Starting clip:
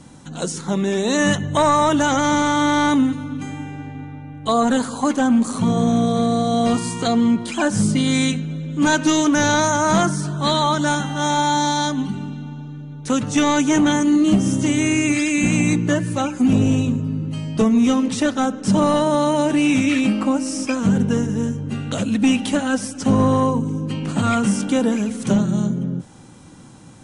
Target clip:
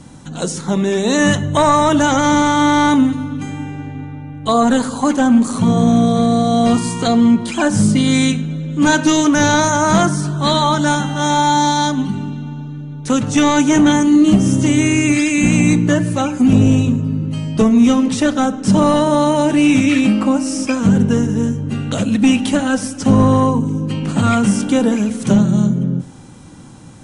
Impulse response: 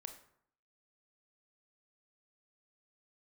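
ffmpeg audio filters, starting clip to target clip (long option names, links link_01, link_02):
-filter_complex "[0:a]asplit=2[link_01][link_02];[1:a]atrim=start_sample=2205,lowshelf=frequency=200:gain=9.5[link_03];[link_02][link_03]afir=irnorm=-1:irlink=0,volume=-1.5dB[link_04];[link_01][link_04]amix=inputs=2:normalize=0"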